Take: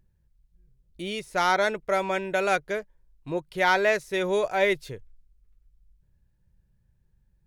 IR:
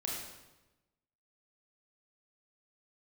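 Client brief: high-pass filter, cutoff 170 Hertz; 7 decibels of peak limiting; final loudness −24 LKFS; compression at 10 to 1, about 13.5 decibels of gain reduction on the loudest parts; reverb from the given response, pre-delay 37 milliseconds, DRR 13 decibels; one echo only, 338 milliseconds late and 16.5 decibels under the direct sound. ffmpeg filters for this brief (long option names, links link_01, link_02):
-filter_complex "[0:a]highpass=170,acompressor=threshold=-31dB:ratio=10,alimiter=level_in=4.5dB:limit=-24dB:level=0:latency=1,volume=-4.5dB,aecho=1:1:338:0.15,asplit=2[link_01][link_02];[1:a]atrim=start_sample=2205,adelay=37[link_03];[link_02][link_03]afir=irnorm=-1:irlink=0,volume=-15dB[link_04];[link_01][link_04]amix=inputs=2:normalize=0,volume=14.5dB"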